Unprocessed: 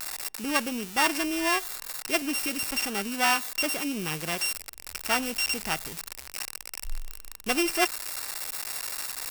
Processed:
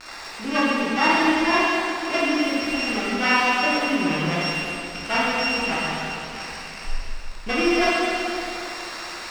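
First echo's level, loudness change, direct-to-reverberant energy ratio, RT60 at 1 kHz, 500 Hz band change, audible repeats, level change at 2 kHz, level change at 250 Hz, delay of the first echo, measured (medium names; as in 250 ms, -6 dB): no echo, +6.0 dB, -8.5 dB, 3.0 s, +9.0 dB, no echo, +7.5 dB, +9.0 dB, no echo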